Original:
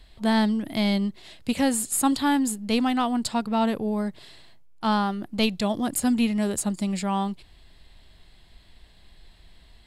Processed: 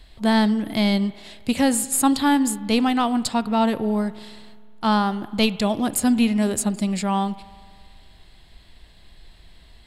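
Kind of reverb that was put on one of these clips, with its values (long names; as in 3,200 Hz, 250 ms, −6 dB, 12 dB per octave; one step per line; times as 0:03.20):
spring reverb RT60 2 s, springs 52 ms, chirp 50 ms, DRR 17 dB
level +3.5 dB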